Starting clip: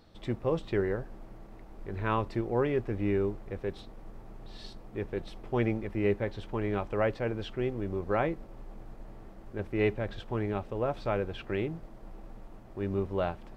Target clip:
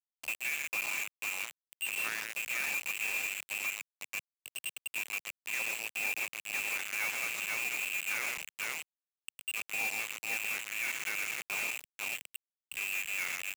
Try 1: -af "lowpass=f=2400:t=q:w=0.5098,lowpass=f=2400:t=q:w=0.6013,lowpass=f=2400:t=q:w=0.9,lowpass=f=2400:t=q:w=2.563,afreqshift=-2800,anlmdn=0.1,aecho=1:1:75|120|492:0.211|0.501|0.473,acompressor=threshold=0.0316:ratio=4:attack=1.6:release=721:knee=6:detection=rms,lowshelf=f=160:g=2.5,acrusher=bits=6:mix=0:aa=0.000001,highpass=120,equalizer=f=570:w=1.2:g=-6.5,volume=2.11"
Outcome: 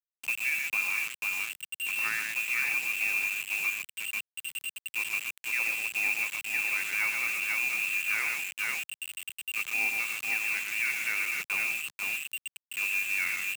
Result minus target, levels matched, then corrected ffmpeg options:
500 Hz band -8.0 dB; compression: peak gain reduction -6.5 dB
-af "lowpass=f=2400:t=q:w=0.5098,lowpass=f=2400:t=q:w=0.6013,lowpass=f=2400:t=q:w=0.9,lowpass=f=2400:t=q:w=2.563,afreqshift=-2800,anlmdn=0.1,aecho=1:1:75|120|492:0.211|0.501|0.473,acompressor=threshold=0.0119:ratio=4:attack=1.6:release=721:knee=6:detection=rms,lowshelf=f=160:g=2.5,acrusher=bits=6:mix=0:aa=0.000001,highpass=120,equalizer=f=570:w=1.2:g=2.5,volume=2.11"

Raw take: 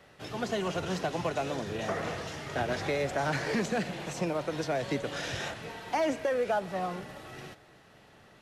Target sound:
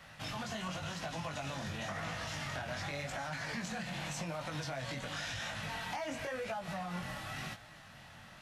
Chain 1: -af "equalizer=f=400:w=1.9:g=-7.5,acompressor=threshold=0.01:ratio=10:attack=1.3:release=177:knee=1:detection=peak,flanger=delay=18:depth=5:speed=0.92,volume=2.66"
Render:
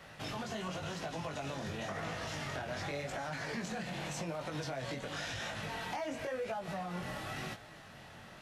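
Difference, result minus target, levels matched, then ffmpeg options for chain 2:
500 Hz band +2.5 dB
-af "equalizer=f=400:w=1.9:g=-19.5,acompressor=threshold=0.01:ratio=10:attack=1.3:release=177:knee=1:detection=peak,flanger=delay=18:depth=5:speed=0.92,volume=2.66"

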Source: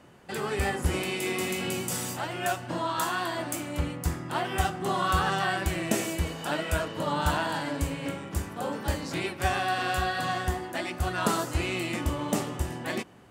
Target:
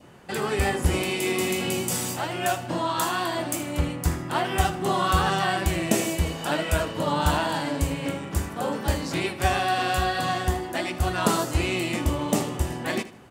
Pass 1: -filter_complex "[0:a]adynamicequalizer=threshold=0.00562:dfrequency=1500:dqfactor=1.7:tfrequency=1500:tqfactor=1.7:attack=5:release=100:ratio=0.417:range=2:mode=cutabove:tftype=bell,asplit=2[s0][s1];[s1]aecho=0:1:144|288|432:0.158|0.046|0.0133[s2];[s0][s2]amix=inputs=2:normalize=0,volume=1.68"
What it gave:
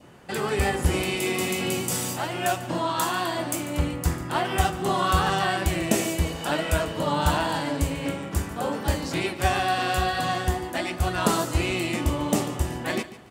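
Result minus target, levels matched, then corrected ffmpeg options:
echo 66 ms late
-filter_complex "[0:a]adynamicequalizer=threshold=0.00562:dfrequency=1500:dqfactor=1.7:tfrequency=1500:tqfactor=1.7:attack=5:release=100:ratio=0.417:range=2:mode=cutabove:tftype=bell,asplit=2[s0][s1];[s1]aecho=0:1:78|156|234:0.158|0.046|0.0133[s2];[s0][s2]amix=inputs=2:normalize=0,volume=1.68"

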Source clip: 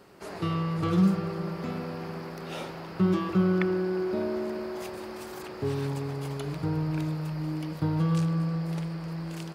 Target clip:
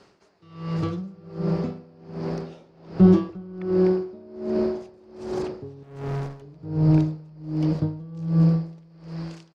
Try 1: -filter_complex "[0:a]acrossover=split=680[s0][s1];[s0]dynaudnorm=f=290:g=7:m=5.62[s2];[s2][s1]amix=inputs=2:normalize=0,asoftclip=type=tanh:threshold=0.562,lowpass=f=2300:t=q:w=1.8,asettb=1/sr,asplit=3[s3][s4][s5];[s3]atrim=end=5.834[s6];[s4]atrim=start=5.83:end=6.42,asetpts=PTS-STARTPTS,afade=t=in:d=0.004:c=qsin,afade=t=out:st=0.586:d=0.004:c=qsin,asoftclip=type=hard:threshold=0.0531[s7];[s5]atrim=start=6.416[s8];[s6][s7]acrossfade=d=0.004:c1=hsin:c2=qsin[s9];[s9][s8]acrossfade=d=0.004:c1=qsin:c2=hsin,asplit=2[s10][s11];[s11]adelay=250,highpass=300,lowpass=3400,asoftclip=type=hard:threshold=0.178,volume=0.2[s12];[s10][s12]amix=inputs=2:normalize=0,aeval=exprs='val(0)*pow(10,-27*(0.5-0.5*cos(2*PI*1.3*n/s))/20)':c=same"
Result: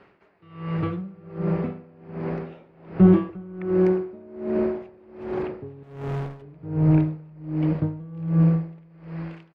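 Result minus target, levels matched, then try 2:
8 kHz band -14.0 dB
-filter_complex "[0:a]acrossover=split=680[s0][s1];[s0]dynaudnorm=f=290:g=7:m=5.62[s2];[s2][s1]amix=inputs=2:normalize=0,asoftclip=type=tanh:threshold=0.562,lowpass=f=5900:t=q:w=1.8,asettb=1/sr,asplit=3[s3][s4][s5];[s3]atrim=end=5.834[s6];[s4]atrim=start=5.83:end=6.42,asetpts=PTS-STARTPTS,afade=t=in:d=0.004:c=qsin,afade=t=out:st=0.586:d=0.004:c=qsin,asoftclip=type=hard:threshold=0.0531[s7];[s5]atrim=start=6.416[s8];[s6][s7]acrossfade=d=0.004:c1=hsin:c2=qsin[s9];[s9][s8]acrossfade=d=0.004:c1=qsin:c2=hsin,asplit=2[s10][s11];[s11]adelay=250,highpass=300,lowpass=3400,asoftclip=type=hard:threshold=0.178,volume=0.2[s12];[s10][s12]amix=inputs=2:normalize=0,aeval=exprs='val(0)*pow(10,-27*(0.5-0.5*cos(2*PI*1.3*n/s))/20)':c=same"

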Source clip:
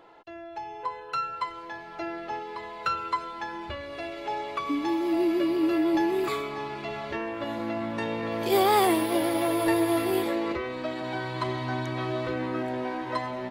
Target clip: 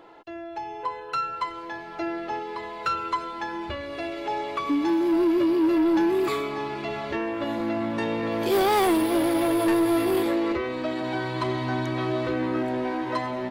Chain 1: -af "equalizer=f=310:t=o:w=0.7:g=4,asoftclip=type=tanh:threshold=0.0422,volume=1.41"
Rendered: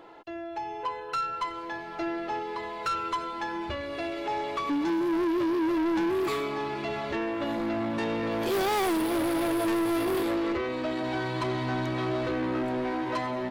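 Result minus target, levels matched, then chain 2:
saturation: distortion +7 dB
-af "equalizer=f=310:t=o:w=0.7:g=4,asoftclip=type=tanh:threshold=0.1,volume=1.41"

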